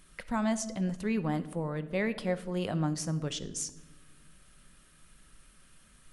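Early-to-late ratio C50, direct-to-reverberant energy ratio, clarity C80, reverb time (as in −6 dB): 15.5 dB, 11.5 dB, 17.5 dB, 1.2 s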